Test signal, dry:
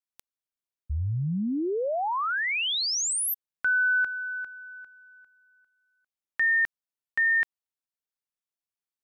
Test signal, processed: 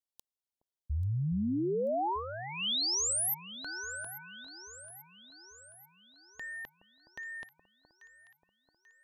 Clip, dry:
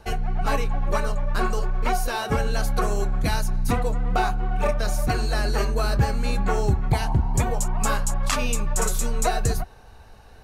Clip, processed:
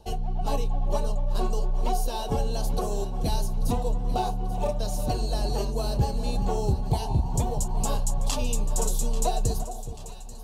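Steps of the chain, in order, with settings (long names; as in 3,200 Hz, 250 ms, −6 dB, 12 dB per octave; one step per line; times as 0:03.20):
flat-topped bell 1,700 Hz −15.5 dB 1.2 octaves
delay that swaps between a low-pass and a high-pass 419 ms, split 1,000 Hz, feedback 72%, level −11 dB
level −3.5 dB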